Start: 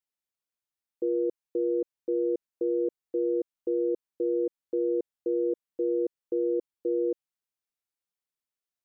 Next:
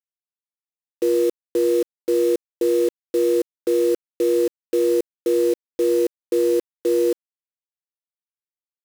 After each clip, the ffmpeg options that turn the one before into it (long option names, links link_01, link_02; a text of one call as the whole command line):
ffmpeg -i in.wav -af "acrusher=bits=6:mix=0:aa=0.000001,volume=8.5dB" out.wav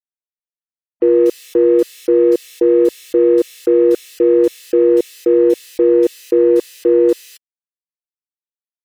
ffmpeg -i in.wav -filter_complex "[0:a]afftfilt=real='re*gte(hypot(re,im),0.00794)':imag='im*gte(hypot(re,im),0.00794)':win_size=1024:overlap=0.75,acrossover=split=3000[link_01][link_02];[link_02]acompressor=threshold=-46dB:ratio=4:attack=1:release=60[link_03];[link_01][link_03]amix=inputs=2:normalize=0,acrossover=split=2400[link_04][link_05];[link_05]adelay=240[link_06];[link_04][link_06]amix=inputs=2:normalize=0,volume=7.5dB" out.wav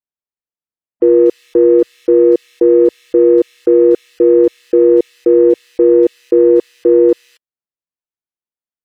ffmpeg -i in.wav -af "lowpass=frequency=1000:poles=1,volume=3.5dB" out.wav